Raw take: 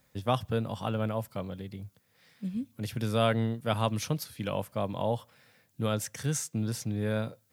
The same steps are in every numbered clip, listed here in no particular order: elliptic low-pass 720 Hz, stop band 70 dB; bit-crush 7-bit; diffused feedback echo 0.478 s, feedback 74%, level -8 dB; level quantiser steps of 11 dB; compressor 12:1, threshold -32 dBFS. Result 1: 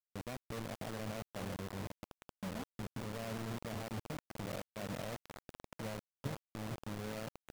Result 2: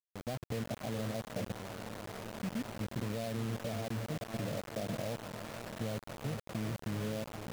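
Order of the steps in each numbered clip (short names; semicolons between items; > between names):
compressor > elliptic low-pass > level quantiser > diffused feedback echo > bit-crush; diffused feedback echo > level quantiser > compressor > elliptic low-pass > bit-crush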